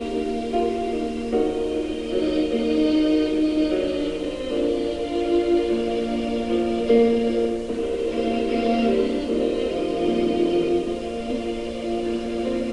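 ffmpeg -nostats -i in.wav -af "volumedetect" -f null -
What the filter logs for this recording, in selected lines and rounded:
mean_volume: -22.3 dB
max_volume: -6.8 dB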